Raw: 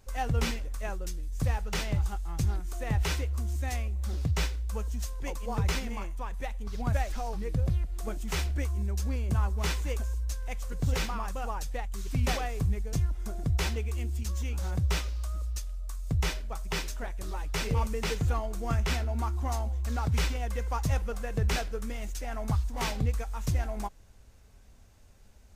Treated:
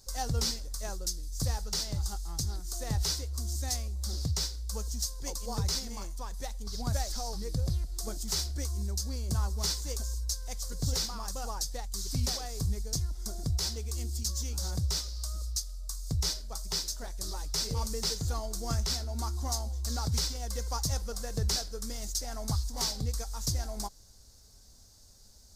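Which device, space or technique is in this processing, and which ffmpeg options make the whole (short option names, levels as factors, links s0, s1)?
over-bright horn tweeter: -af "highshelf=f=3500:t=q:w=3:g=10.5,alimiter=limit=0.15:level=0:latency=1:release=366,volume=0.708"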